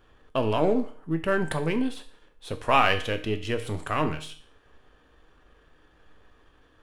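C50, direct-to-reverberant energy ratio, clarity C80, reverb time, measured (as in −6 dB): 13.0 dB, 7.0 dB, 16.0 dB, 0.50 s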